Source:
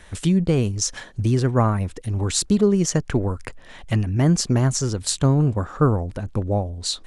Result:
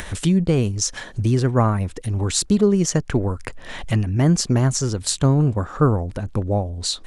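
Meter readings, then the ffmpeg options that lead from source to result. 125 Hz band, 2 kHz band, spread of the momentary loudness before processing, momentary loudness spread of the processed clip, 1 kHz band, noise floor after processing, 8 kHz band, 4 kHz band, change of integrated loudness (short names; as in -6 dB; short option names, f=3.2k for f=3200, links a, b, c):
+1.0 dB, +2.0 dB, 8 LU, 8 LU, +1.0 dB, -40 dBFS, +1.0 dB, +1.5 dB, +1.0 dB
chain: -af "acompressor=mode=upward:threshold=-23dB:ratio=2.5,volume=1dB"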